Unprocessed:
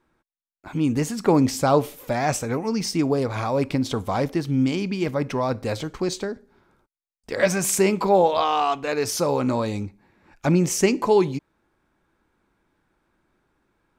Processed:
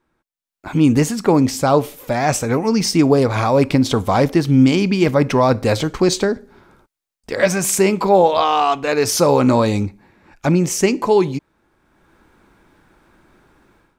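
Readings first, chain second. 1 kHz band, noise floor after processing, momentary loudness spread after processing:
+6.0 dB, -85 dBFS, 7 LU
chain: AGC gain up to 16.5 dB; gain -1 dB

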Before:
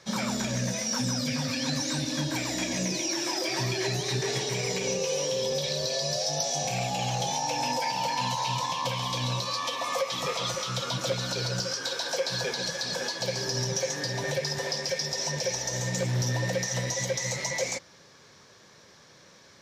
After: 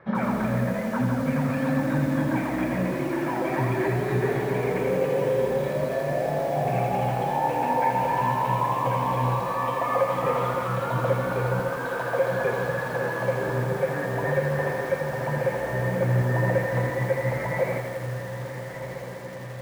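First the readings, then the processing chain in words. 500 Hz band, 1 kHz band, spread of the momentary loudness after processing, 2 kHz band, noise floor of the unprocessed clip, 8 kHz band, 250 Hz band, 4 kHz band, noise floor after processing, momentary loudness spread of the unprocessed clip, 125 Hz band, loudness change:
+7.0 dB, +7.0 dB, 4 LU, +3.5 dB, -55 dBFS, -17.5 dB, +6.5 dB, -16.0 dB, -34 dBFS, 2 LU, +6.0 dB, +3.0 dB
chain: LPF 1800 Hz 24 dB/oct; on a send: diffused feedback echo 1.381 s, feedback 65%, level -10.5 dB; on the sum: lo-fi delay 83 ms, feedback 80%, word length 8-bit, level -7 dB; gain +5.5 dB

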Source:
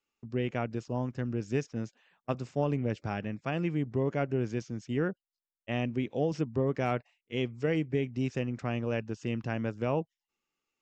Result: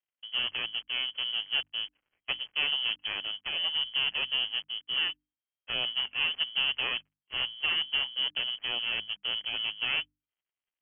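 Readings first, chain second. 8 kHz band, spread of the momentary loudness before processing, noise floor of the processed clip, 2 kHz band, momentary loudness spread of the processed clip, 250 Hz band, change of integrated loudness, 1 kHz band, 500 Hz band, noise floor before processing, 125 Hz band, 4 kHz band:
n/a, 7 LU, under -85 dBFS, +9.5 dB, 7 LU, -24.0 dB, +3.5 dB, -5.5 dB, -18.0 dB, under -85 dBFS, -26.0 dB, +23.5 dB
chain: switching dead time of 0.3 ms; inverted band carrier 3200 Hz; notches 50/100/150/200/250/300 Hz

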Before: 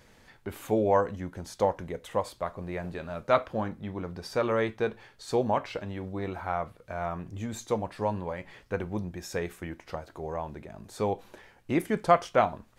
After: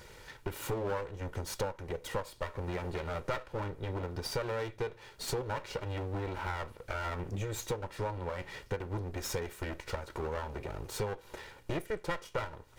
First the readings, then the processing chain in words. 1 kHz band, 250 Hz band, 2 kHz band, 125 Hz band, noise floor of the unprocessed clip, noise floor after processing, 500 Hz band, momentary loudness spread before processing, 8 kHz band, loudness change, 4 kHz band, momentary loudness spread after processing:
-9.5 dB, -9.5 dB, -3.5 dB, -1.0 dB, -59 dBFS, -57 dBFS, -8.0 dB, 14 LU, +2.5 dB, -7.0 dB, +1.0 dB, 5 LU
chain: minimum comb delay 2.1 ms; compressor 6:1, threshold -40 dBFS, peak gain reduction 20 dB; gain +7 dB

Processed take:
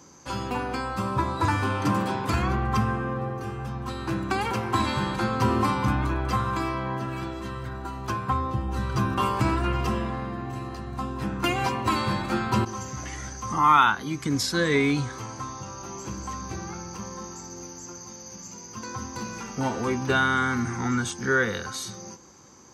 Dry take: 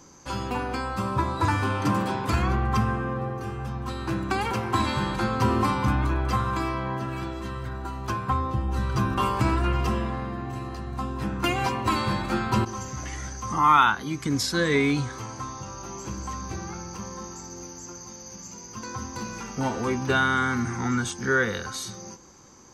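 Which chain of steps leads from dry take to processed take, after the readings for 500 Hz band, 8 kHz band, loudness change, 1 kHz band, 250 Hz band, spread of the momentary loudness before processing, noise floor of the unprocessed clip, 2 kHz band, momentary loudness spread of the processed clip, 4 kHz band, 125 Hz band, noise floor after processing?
0.0 dB, 0.0 dB, 0.0 dB, 0.0 dB, 0.0 dB, 14 LU, -43 dBFS, 0.0 dB, 14 LU, 0.0 dB, -1.0 dB, -43 dBFS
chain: HPF 67 Hz

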